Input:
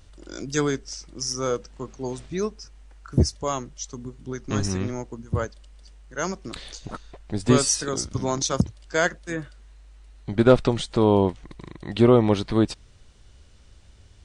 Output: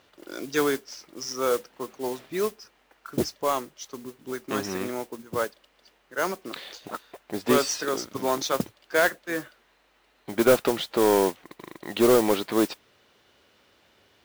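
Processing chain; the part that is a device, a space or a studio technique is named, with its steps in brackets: carbon microphone (BPF 340–3600 Hz; soft clip -14 dBFS, distortion -13 dB; modulation noise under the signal 14 dB); gain +3 dB

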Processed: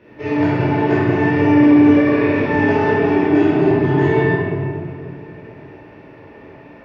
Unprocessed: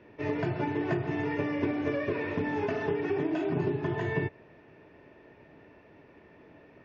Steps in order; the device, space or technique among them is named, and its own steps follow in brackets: tunnel (flutter echo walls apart 8.7 m, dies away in 0.32 s; reverb RT60 2.6 s, pre-delay 12 ms, DRR -9 dB); gain +4 dB

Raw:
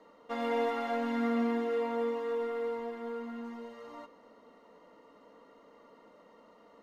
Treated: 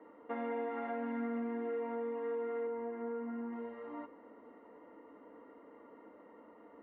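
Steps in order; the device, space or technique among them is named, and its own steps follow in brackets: 2.67–3.53 air absorption 380 m; bass amplifier (compressor 5:1, threshold -37 dBFS, peak gain reduction 10 dB; speaker cabinet 78–2100 Hz, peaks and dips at 79 Hz +6 dB, 110 Hz -7 dB, 170 Hz -9 dB, 310 Hz +7 dB, 610 Hz -4 dB, 1200 Hz -5 dB); gain +2 dB

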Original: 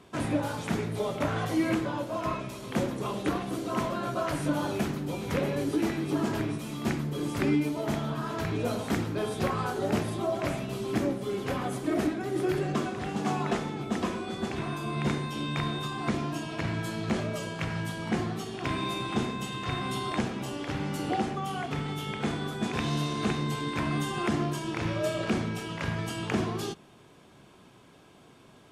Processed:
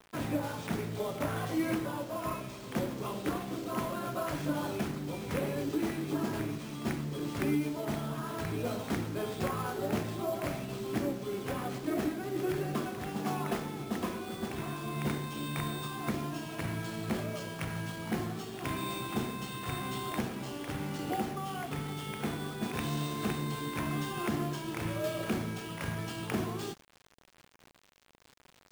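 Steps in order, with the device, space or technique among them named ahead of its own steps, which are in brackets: early 8-bit sampler (sample-rate reducer 12000 Hz, jitter 0%; bit-crush 8-bit); gain -4.5 dB

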